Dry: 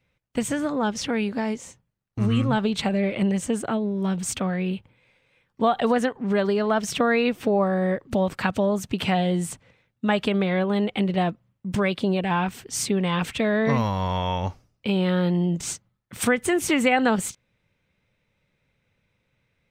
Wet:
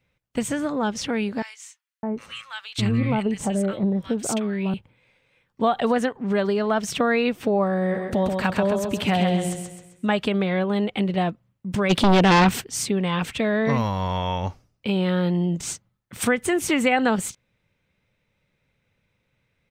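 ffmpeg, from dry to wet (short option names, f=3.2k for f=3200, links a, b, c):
-filter_complex "[0:a]asettb=1/sr,asplit=3[a][b][c];[a]atrim=end=1.424[d];[b]atrim=start=1.42:end=4.74,asetpts=PTS-STARTPTS,afade=t=in:d=0.004:c=qsin,afade=t=out:st=3.316:d=0.004:c=qsin,acrossover=split=1300[e][f];[e]adelay=610[g];[g][f]amix=inputs=2:normalize=0,atrim=end_sample=146412[h];[c]atrim=start=4.736[i];[d][h]acrossfade=d=0.004:c1=hsin:c2=qsin[j];[j][i]acrossfade=d=0.004:c1=qsin:c2=hsin,asplit=3[k][l][m];[k]afade=t=out:st=7.93:d=0.02[n];[l]aecho=1:1:132|264|396|528|660:0.596|0.238|0.0953|0.0381|0.0152,afade=t=in:st=7.93:d=0.02,afade=t=out:st=10.07:d=0.02[o];[m]afade=t=in:st=10.07:d=0.02[p];[n][o][p]amix=inputs=3:normalize=0,asplit=3[q][r][s];[q]afade=t=out:st=11.89:d=0.02[t];[r]aeval=exprs='0.251*sin(PI/2*2.82*val(0)/0.251)':c=same,afade=t=in:st=11.89:d=0.02,afade=t=out:st=12.6:d=0.02[u];[s]afade=t=in:st=12.6:d=0.02[v];[t][u][v]amix=inputs=3:normalize=0"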